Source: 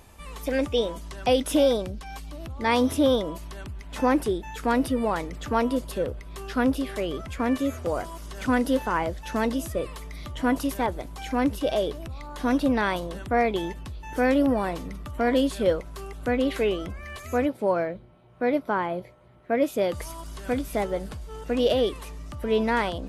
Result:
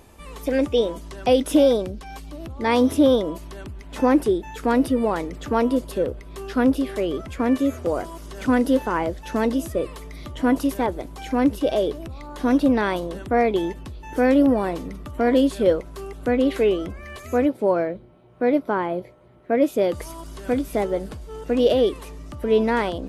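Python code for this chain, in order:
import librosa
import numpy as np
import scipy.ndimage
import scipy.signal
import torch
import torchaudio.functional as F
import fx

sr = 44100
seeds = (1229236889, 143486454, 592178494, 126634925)

y = fx.peak_eq(x, sr, hz=350.0, db=6.5, octaves=1.5)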